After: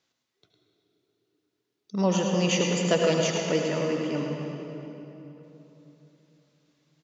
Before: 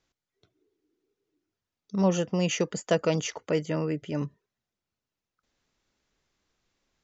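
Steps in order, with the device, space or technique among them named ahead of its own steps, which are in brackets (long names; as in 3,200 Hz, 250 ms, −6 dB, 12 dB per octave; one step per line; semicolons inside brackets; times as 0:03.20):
PA in a hall (high-pass filter 130 Hz; parametric band 3,900 Hz +4.5 dB 1.2 octaves; single-tap delay 106 ms −8 dB; convolution reverb RT60 3.3 s, pre-delay 68 ms, DRR 1.5 dB)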